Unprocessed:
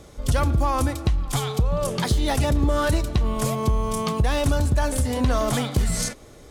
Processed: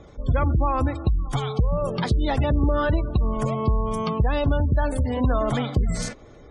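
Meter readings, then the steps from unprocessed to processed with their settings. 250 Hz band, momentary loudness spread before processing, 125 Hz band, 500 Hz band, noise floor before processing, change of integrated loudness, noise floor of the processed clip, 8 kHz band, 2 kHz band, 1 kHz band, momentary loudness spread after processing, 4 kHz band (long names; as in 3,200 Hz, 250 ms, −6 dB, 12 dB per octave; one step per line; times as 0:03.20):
0.0 dB, 4 LU, 0.0 dB, 0.0 dB, −46 dBFS, −0.5 dB, −46 dBFS, −11.5 dB, −2.0 dB, −0.5 dB, 4 LU, −6.0 dB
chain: low-pass filter 3,500 Hz 6 dB per octave
gate on every frequency bin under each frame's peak −30 dB strong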